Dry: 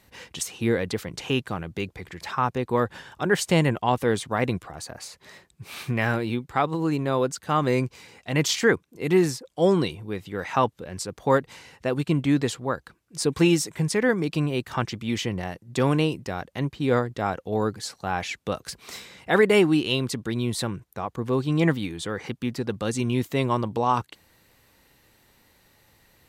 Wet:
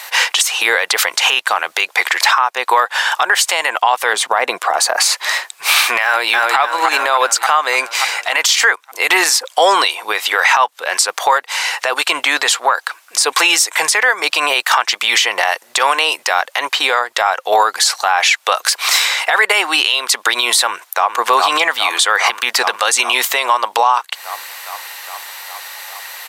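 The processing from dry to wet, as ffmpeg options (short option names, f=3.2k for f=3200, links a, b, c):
-filter_complex "[0:a]asettb=1/sr,asplit=3[a][b][c];[a]atrim=end=4.134[d];[b]atrim=start=4.13:end=4.98,asetpts=PTS-STARTPTS,afade=t=in:d=0.004:c=qsin,afade=t=out:st=0.846:d=0.004:c=qsin,tiltshelf=f=640:g=7[e];[c]atrim=start=4.976[f];[d][e]acrossfade=d=0.004:c1=hsin:c2=qsin[g];[g][f]acrossfade=d=0.004:c1=qsin:c2=hsin,asplit=2[h][i];[i]afade=t=in:st=6.04:d=0.01,afade=t=out:st=6.59:d=0.01,aecho=0:1:290|580|870|1160|1450|1740|2030|2320:0.473151|0.283891|0.170334|0.102201|0.0613204|0.0367922|0.0220753|0.0132452[j];[h][j]amix=inputs=2:normalize=0,asettb=1/sr,asplit=3[k][l][m];[k]atrim=end=12.494[n];[l]atrim=start=12.49:end=13.26,asetpts=PTS-STARTPTS,afade=t=in:d=0.004:c=qsin,afade=t=out:st=0.766:d=0.004:c=qsin,acompressor=threshold=-27dB:ratio=6:attack=3.2:release=140:knee=1:detection=peak[o];[m]atrim=start=13.256[p];[n][o]acrossfade=d=0.004:c1=hsin:c2=qsin[q];[q][p]acrossfade=d=0.004:c1=qsin:c2=hsin,asplit=2[r][s];[s]afade=t=in:st=20.67:d=0.01,afade=t=out:st=21.17:d=0.01,aecho=0:1:410|820|1230|1640|2050|2460|2870|3280|3690|4100|4510|4920:0.446684|0.335013|0.25126|0.188445|0.141333|0.106|0.0795001|0.0596251|0.0447188|0.0335391|0.0251543|0.0188657[t];[r][t]amix=inputs=2:normalize=0,highpass=f=770:w=0.5412,highpass=f=770:w=1.3066,acompressor=threshold=-37dB:ratio=16,alimiter=level_in=32dB:limit=-1dB:release=50:level=0:latency=1,volume=-1dB"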